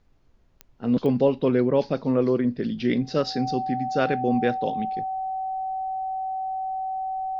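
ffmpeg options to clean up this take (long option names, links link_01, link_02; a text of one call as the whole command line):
ffmpeg -i in.wav -af "adeclick=threshold=4,bandreject=frequency=760:width=30,agate=range=-21dB:threshold=-45dB" out.wav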